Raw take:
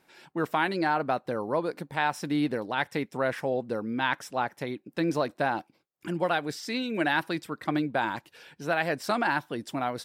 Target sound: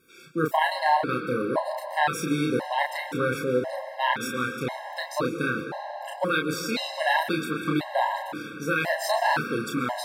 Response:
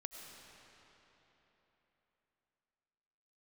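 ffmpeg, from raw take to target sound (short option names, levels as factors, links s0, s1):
-filter_complex "[0:a]crystalizer=i=1:c=0,asplit=2[s0][s1];[1:a]atrim=start_sample=2205,adelay=32[s2];[s1][s2]afir=irnorm=-1:irlink=0,volume=1.19[s3];[s0][s3]amix=inputs=2:normalize=0,afftfilt=real='re*gt(sin(2*PI*0.96*pts/sr)*(1-2*mod(floor(b*sr/1024/540),2)),0)':imag='im*gt(sin(2*PI*0.96*pts/sr)*(1-2*mod(floor(b*sr/1024/540),2)),0)':win_size=1024:overlap=0.75,volume=1.5"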